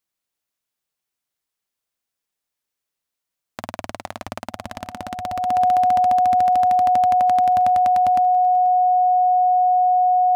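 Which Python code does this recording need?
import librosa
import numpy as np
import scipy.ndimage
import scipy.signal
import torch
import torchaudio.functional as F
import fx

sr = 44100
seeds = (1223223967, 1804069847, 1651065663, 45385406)

y = fx.notch(x, sr, hz=730.0, q=30.0)
y = fx.fix_echo_inverse(y, sr, delay_ms=486, level_db=-22.5)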